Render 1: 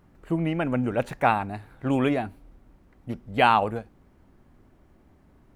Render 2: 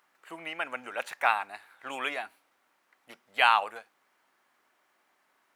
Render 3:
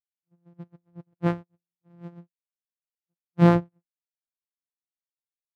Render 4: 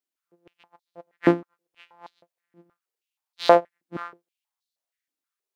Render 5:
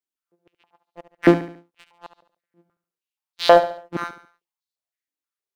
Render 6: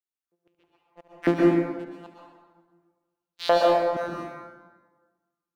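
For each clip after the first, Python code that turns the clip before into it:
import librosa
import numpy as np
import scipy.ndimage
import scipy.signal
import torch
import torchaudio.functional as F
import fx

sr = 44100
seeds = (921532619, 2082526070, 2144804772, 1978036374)

y1 = scipy.signal.sosfilt(scipy.signal.butter(2, 1200.0, 'highpass', fs=sr, output='sos'), x)
y1 = y1 * 10.0 ** (2.0 / 20.0)
y2 = np.r_[np.sort(y1[:len(y1) // 256 * 256].reshape(-1, 256), axis=1).ravel(), y1[len(y1) // 256 * 256:]]
y2 = fx.spectral_expand(y2, sr, expansion=2.5)
y3 = y2 + 10.0 ** (-19.5 / 20.0) * np.pad(y2, (int(532 * sr / 1000.0), 0))[:len(y2)]
y3 = fx.filter_held_highpass(y3, sr, hz=6.3, low_hz=280.0, high_hz=4000.0)
y3 = y3 * 10.0 ** (5.0 / 20.0)
y4 = fx.leveller(y3, sr, passes=2)
y4 = fx.echo_feedback(y4, sr, ms=71, feedback_pct=42, wet_db=-12.5)
y4 = y4 * 10.0 ** (-1.0 / 20.0)
y5 = fx.rev_plate(y4, sr, seeds[0], rt60_s=1.4, hf_ratio=0.6, predelay_ms=105, drr_db=-2.5)
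y5 = y5 * 10.0 ** (-8.5 / 20.0)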